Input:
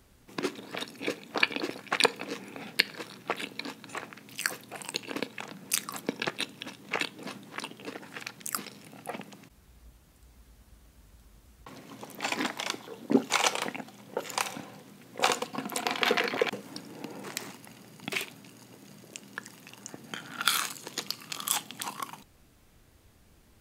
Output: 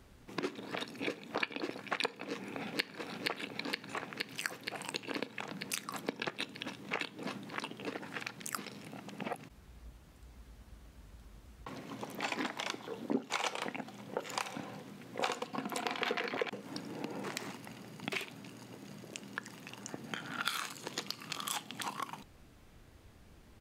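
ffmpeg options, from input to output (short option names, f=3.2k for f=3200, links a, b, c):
-filter_complex "[0:a]asplit=2[a][b];[b]afade=t=in:st=2.25:d=0.01,afade=t=out:st=2.98:d=0.01,aecho=0:1:470|940|1410|1880|2350|2820|3290|3760|4230|4700|5170|5640:0.630957|0.44167|0.309169|0.216418|0.151493|0.106045|0.0742315|0.0519621|0.0363734|0.0254614|0.017823|0.0124761[c];[a][c]amix=inputs=2:normalize=0,asplit=3[d][e][f];[d]atrim=end=9.002[g];[e]atrim=start=8.998:end=9.422,asetpts=PTS-STARTPTS,areverse[h];[f]atrim=start=9.418[i];[g][h]acrossfade=d=0.004:c1=hsin:c2=hsin[j];[j][i]acrossfade=d=0.004:c1=hsin:c2=hsin,highshelf=f=6.1k:g=-9.5,acompressor=threshold=-38dB:ratio=2.5,volume=2dB"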